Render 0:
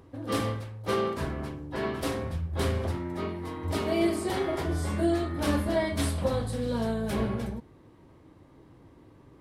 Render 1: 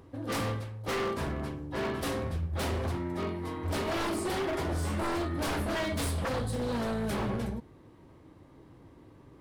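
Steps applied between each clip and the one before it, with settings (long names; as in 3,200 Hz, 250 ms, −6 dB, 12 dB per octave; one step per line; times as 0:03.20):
wave folding −26 dBFS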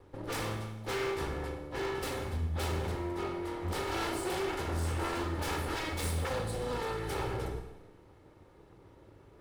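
lower of the sound and its delayed copy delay 2.3 ms
four-comb reverb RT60 1 s, combs from 33 ms, DRR 6.5 dB
level −2 dB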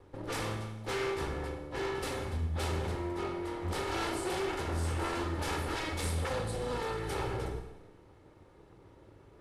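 low-pass filter 12,000 Hz 24 dB per octave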